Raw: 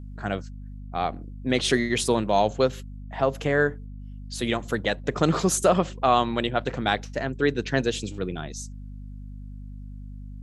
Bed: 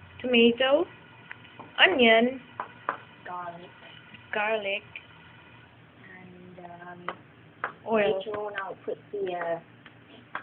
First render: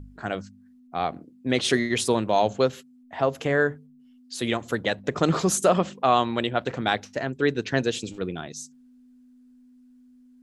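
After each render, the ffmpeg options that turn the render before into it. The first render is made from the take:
-af "bandreject=f=50:t=h:w=4,bandreject=f=100:t=h:w=4,bandreject=f=150:t=h:w=4,bandreject=f=200:t=h:w=4"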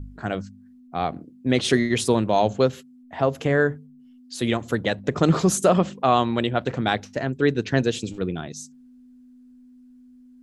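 -af "lowshelf=f=300:g=7"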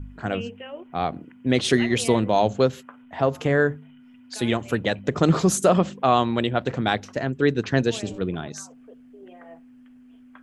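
-filter_complex "[1:a]volume=0.168[s0];[0:a][s0]amix=inputs=2:normalize=0"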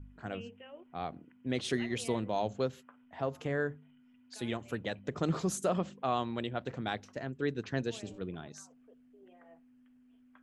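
-af "volume=0.224"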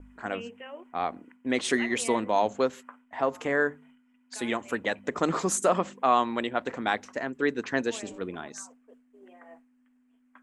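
-af "agate=range=0.0224:threshold=0.00158:ratio=3:detection=peak,equalizer=f=125:t=o:w=1:g=-10,equalizer=f=250:t=o:w=1:g=7,equalizer=f=500:t=o:w=1:g=4,equalizer=f=1000:t=o:w=1:g=10,equalizer=f=2000:t=o:w=1:g=9,equalizer=f=8000:t=o:w=1:g=12"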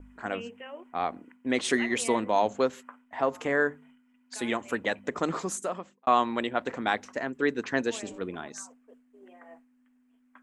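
-filter_complex "[0:a]asplit=2[s0][s1];[s0]atrim=end=6.07,asetpts=PTS-STARTPTS,afade=t=out:st=4.96:d=1.11[s2];[s1]atrim=start=6.07,asetpts=PTS-STARTPTS,afade=t=in:d=0.004:c=hsin[s3];[s2][s3]concat=n=2:v=0:a=1"

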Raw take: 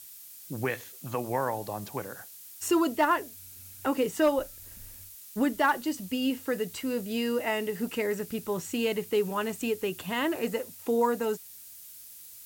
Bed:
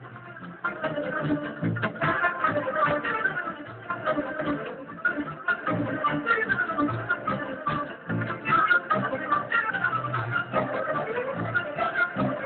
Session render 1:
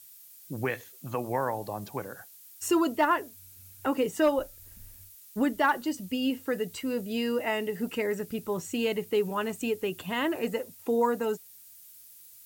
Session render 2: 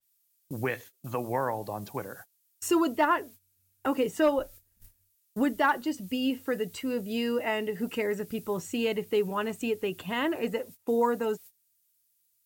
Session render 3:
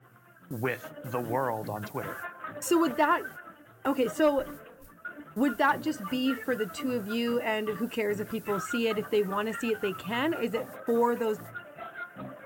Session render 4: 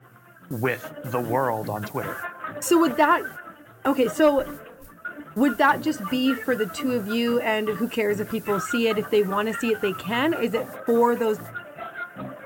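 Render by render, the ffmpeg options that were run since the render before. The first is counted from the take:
-af "afftdn=nr=6:nf=-48"
-af "agate=range=0.1:threshold=0.00562:ratio=16:detection=peak,adynamicequalizer=threshold=0.00398:dfrequency=4700:dqfactor=0.7:tfrequency=4700:tqfactor=0.7:attack=5:release=100:ratio=0.375:range=3:mode=cutabove:tftype=highshelf"
-filter_complex "[1:a]volume=0.178[s0];[0:a][s0]amix=inputs=2:normalize=0"
-af "volume=2"

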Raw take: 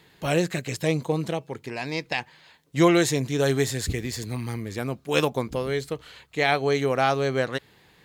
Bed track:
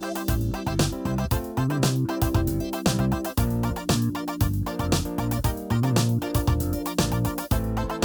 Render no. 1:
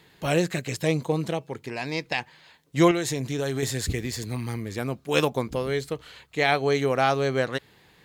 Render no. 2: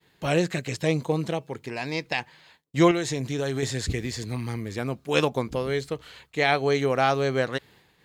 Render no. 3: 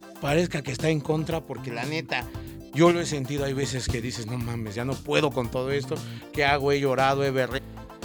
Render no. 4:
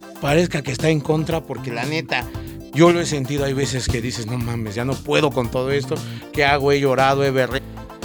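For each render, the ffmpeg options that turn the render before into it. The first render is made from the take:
-filter_complex "[0:a]asettb=1/sr,asplit=3[s0][s1][s2];[s0]atrim=end=2.914[s3];[s1]atrim=start=2.91:end=3.63,asetpts=PTS-STARTPTS,afade=t=in:d=0.004:c=qsin,afade=t=out:st=0.716:d=0.004:c=qsin,acompressor=threshold=0.0631:ratio=4:attack=3.2:release=140:knee=1:detection=peak[s4];[s2]atrim=start=3.626[s5];[s3][s4]acrossfade=d=0.004:c1=hsin:c2=qsin[s6];[s6][s5]acrossfade=d=0.004:c1=qsin:c2=hsin"
-filter_complex "[0:a]agate=range=0.0224:threshold=0.00282:ratio=3:detection=peak,acrossover=split=8500[s0][s1];[s1]acompressor=threshold=0.00158:ratio=4:attack=1:release=60[s2];[s0][s2]amix=inputs=2:normalize=0"
-filter_complex "[1:a]volume=0.188[s0];[0:a][s0]amix=inputs=2:normalize=0"
-af "volume=2.11,alimiter=limit=0.794:level=0:latency=1"

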